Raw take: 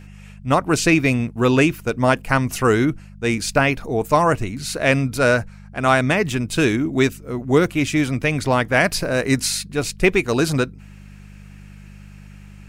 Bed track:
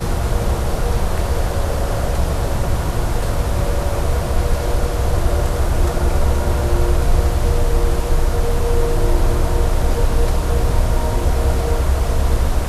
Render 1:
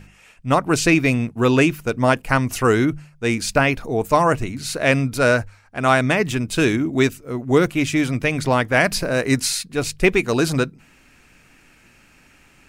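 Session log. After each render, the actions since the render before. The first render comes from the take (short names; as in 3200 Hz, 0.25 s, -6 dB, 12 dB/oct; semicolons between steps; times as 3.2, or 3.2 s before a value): de-hum 50 Hz, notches 4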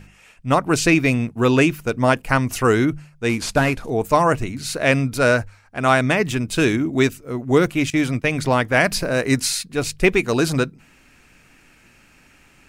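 3.29–3.9 CVSD 64 kbps; 7.9–8.36 gate -28 dBFS, range -15 dB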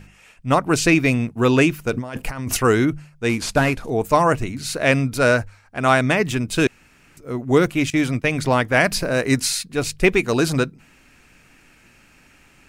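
1.93–2.57 negative-ratio compressor -27 dBFS; 6.67–7.17 room tone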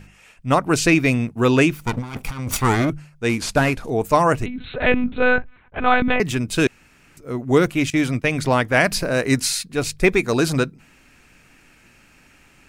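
1.74–2.9 minimum comb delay 0.87 ms; 4.46–6.2 monotone LPC vocoder at 8 kHz 250 Hz; 9.94–10.39 notch 2900 Hz, Q 7.2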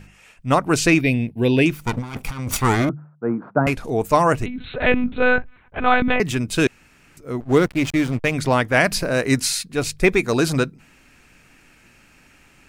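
1.01–1.66 fixed phaser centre 3000 Hz, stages 4; 2.89–3.67 Chebyshev band-pass 130–1400 Hz, order 4; 7.4–8.34 backlash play -25 dBFS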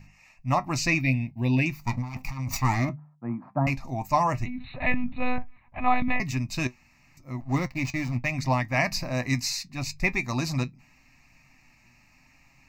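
flange 0.8 Hz, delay 7.3 ms, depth 1 ms, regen +64%; fixed phaser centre 2200 Hz, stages 8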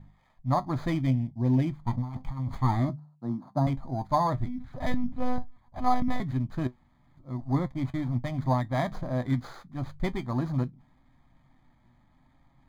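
sample sorter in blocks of 8 samples; running mean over 16 samples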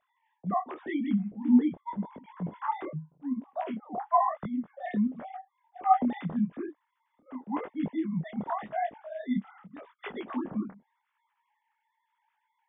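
sine-wave speech; detuned doubles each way 31 cents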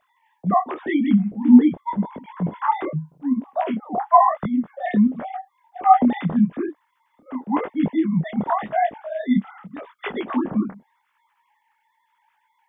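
gain +10.5 dB; limiter -2 dBFS, peak gain reduction 2.5 dB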